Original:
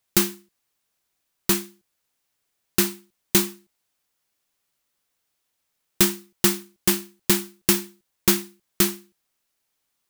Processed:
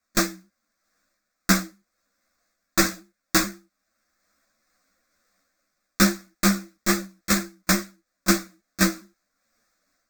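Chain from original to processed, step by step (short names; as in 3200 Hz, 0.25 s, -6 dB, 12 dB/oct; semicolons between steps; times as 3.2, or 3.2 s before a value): repeated pitch sweeps -1.5 st, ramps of 0.429 s; dynamic EQ 7800 Hz, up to +5 dB, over -40 dBFS, Q 1.7; AGC gain up to 9.5 dB; sample-rate reducer 11000 Hz, jitter 0%; fixed phaser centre 600 Hz, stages 8; ensemble effect; gain +4 dB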